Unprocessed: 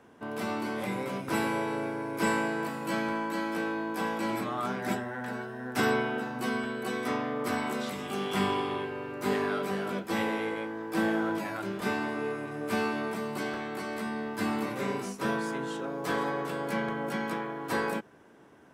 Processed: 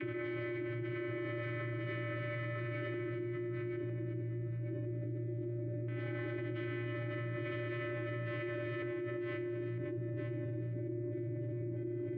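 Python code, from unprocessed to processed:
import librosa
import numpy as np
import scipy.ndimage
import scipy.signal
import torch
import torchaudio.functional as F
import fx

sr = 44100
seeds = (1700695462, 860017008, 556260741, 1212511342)

y = fx.low_shelf(x, sr, hz=150.0, db=4.0)
y = y + 0.34 * np.pad(y, (int(7.2 * sr / 1000.0), 0))[:len(y)]
y = fx.dynamic_eq(y, sr, hz=930.0, q=0.71, threshold_db=-41.0, ratio=4.0, max_db=-4)
y = np.abs(y)
y = fx.vocoder(y, sr, bands=32, carrier='square', carrier_hz=118.0)
y = fx.stretch_vocoder_free(y, sr, factor=0.65)
y = fx.vowel_filter(y, sr, vowel='i')
y = fx.filter_lfo_lowpass(y, sr, shape='square', hz=0.17, low_hz=400.0, high_hz=1600.0, q=0.99)
y = fx.echo_feedback(y, sr, ms=956, feedback_pct=28, wet_db=-4)
y = fx.env_flatten(y, sr, amount_pct=100)
y = y * librosa.db_to_amplitude(14.0)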